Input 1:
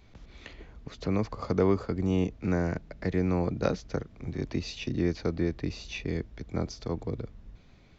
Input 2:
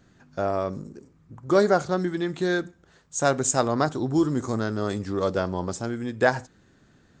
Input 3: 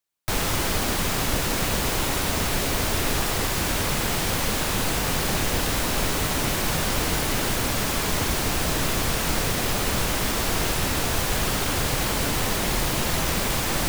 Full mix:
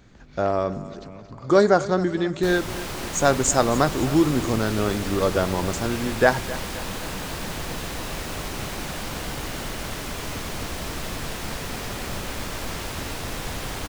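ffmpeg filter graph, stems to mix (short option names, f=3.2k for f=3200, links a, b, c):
-filter_complex "[0:a]asoftclip=type=tanh:threshold=-26.5dB,acompressor=threshold=-42dB:ratio=6,volume=0dB,asplit=2[a][b];[b]volume=-12.5dB[c];[1:a]volume=3dB,asplit=2[d][e];[e]volume=-17dB[f];[2:a]highshelf=f=8.3k:g=-6,adelay=2150,volume=-8.5dB,asplit=2[g][h];[h]volume=-3dB[i];[c][f][i]amix=inputs=3:normalize=0,aecho=0:1:264|528|792|1056|1320|1584|1848|2112:1|0.52|0.27|0.141|0.0731|0.038|0.0198|0.0103[j];[a][d][g][j]amix=inputs=4:normalize=0"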